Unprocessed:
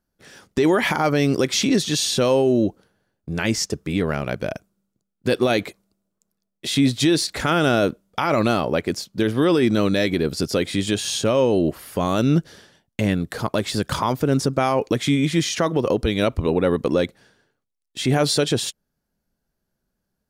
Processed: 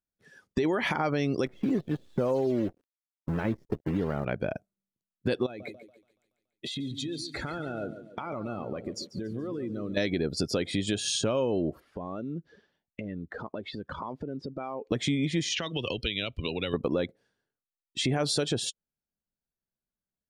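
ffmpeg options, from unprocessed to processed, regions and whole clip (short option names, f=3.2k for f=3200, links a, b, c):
-filter_complex "[0:a]asettb=1/sr,asplit=3[a][b][c];[a]atrim=end=1.464[d];[b]atrim=start=1.46:end=4.25,asetpts=PTS-STARTPTS,afade=t=in:d=0.004:c=qsin,afade=t=out:st=2.786:d=0.004:c=qsin,lowpass=1.2k,acrusher=bits=6:dc=4:mix=0:aa=0.000001[e];[c]atrim=start=4.246[f];[d][e]acrossfade=d=0.004:c1=hsin:c2=qsin[g];[g][f]acrossfade=d=0.004:c1=qsin:c2=hsin,asettb=1/sr,asplit=3[h][i][j];[h]atrim=end=5.464[k];[i]atrim=start=5.46:end=9.97,asetpts=PTS-STARTPTS,afade=t=in:d=0.004:c=qsin,afade=t=out:st=4.506:d=0.004:c=qsin,bandreject=f=5.2k:w=16,acompressor=threshold=-30dB:ratio=20:attack=3.2:release=140:knee=1:detection=peak,aecho=1:1:142|284|426|568|710|852|994:0.335|0.201|0.121|0.0724|0.0434|0.026|0.0156,atrim=end_sample=198891[l];[j]atrim=start=9.966[m];[k][l]acrossfade=d=0.004:c1=hsin:c2=qsin[n];[n][m]acrossfade=d=0.004:c1=qsin:c2=hsin,asettb=1/sr,asplit=3[o][p][q];[o]atrim=end=11.804[r];[p]atrim=start=11.8:end=14.92,asetpts=PTS-STARTPTS,afade=t=in:d=0.004:c=qsin,afade=t=out:st=3.116:d=0.004:c=qsin,lowpass=3.8k,acompressor=threshold=-34dB:ratio=4:attack=3.2:release=140:knee=1:detection=peak,equalizer=f=120:t=o:w=0.54:g=-7.5[s];[q]atrim=start=14.916[t];[r][s]acrossfade=d=0.004:c1=hsin:c2=qsin[u];[u][t]acrossfade=d=0.004:c1=qsin:c2=hsin,asettb=1/sr,asplit=3[v][w][x];[v]atrim=end=15.524[y];[w]atrim=start=15.52:end=16.74,asetpts=PTS-STARTPTS,afade=t=in:d=0.004:c=qsin,afade=t=out:st=1.216:d=0.004:c=qsin,equalizer=f=2.9k:t=o:w=1.2:g=15,acrossover=split=100|3000[z][aa][ab];[z]acompressor=threshold=-38dB:ratio=4[ac];[aa]acompressor=threshold=-31dB:ratio=4[ad];[ab]acompressor=threshold=-30dB:ratio=4[ae];[ac][ad][ae]amix=inputs=3:normalize=0[af];[x]atrim=start=16.736[ag];[y][af]acrossfade=d=0.004:c1=hsin:c2=qsin[ah];[ah][ag]acrossfade=d=0.004:c1=qsin:c2=hsin,afftdn=nr=19:nf=-37,acompressor=threshold=-27dB:ratio=3"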